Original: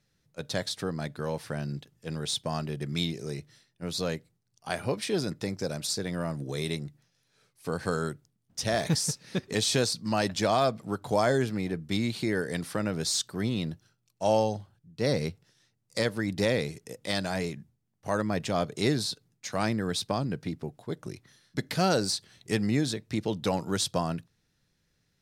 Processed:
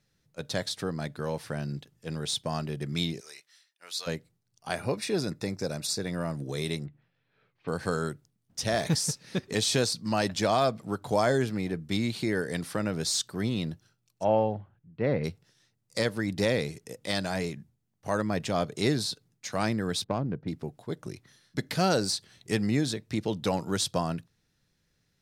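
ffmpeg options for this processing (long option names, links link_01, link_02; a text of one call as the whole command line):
ffmpeg -i in.wav -filter_complex "[0:a]asplit=3[link_01][link_02][link_03];[link_01]afade=type=out:start_time=3.19:duration=0.02[link_04];[link_02]highpass=1300,afade=type=in:start_time=3.19:duration=0.02,afade=type=out:start_time=4.06:duration=0.02[link_05];[link_03]afade=type=in:start_time=4.06:duration=0.02[link_06];[link_04][link_05][link_06]amix=inputs=3:normalize=0,asettb=1/sr,asplit=3[link_07][link_08][link_09];[link_07]atrim=end=4.764[link_10];[link_08]atrim=start=4.76:end=6.26,asetpts=PTS-STARTPTS,afade=type=in:duration=0.004:curve=qsin,afade=type=out:start_time=1.496:duration=0.004:curve=qsin,asuperstop=centerf=3100:order=20:qfactor=7.9[link_11];[link_09]atrim=start=6.256[link_12];[link_10][link_11]acrossfade=duration=0.004:curve1=hsin:curve2=qsin[link_13];[link_13][link_12]acrossfade=duration=0.004:curve1=qsin:curve2=hsin,asettb=1/sr,asplit=3[link_14][link_15][link_16];[link_14]atrim=end=6.854[link_17];[link_15]atrim=start=6.85:end=7.68,asetpts=PTS-STARTPTS,afade=type=in:duration=0.004:curve=qsin,afade=type=out:start_time=0.826:duration=0.004:curve=qsin,lowpass=frequency=3000:width=0.5412,lowpass=frequency=3000:width=1.3066[link_18];[link_16]atrim=start=7.676[link_19];[link_17][link_18]acrossfade=duration=0.004:curve1=hsin:curve2=qsin[link_20];[link_20][link_19]acrossfade=duration=0.004:curve1=qsin:curve2=hsin,asplit=3[link_21][link_22][link_23];[link_21]afade=type=out:start_time=14.23:duration=0.02[link_24];[link_22]lowpass=frequency=2500:width=0.5412,lowpass=frequency=2500:width=1.3066,afade=type=in:start_time=14.23:duration=0.02,afade=type=out:start_time=15.23:duration=0.02[link_25];[link_23]afade=type=in:start_time=15.23:duration=0.02[link_26];[link_24][link_25][link_26]amix=inputs=3:normalize=0,asettb=1/sr,asplit=3[link_27][link_28][link_29];[link_27]atrim=end=20.044[link_30];[link_28]atrim=start=20.04:end=20.48,asetpts=PTS-STARTPTS,afade=type=in:duration=0.004:curve=qsin,afade=type=out:start_time=0.436:duration=0.004:curve=qsin,adynamicsmooth=sensitivity=1:basefreq=1000[link_31];[link_29]atrim=start=20.476[link_32];[link_30][link_31]acrossfade=duration=0.004:curve1=hsin:curve2=qsin[link_33];[link_33][link_32]acrossfade=duration=0.004:curve1=qsin:curve2=hsin" out.wav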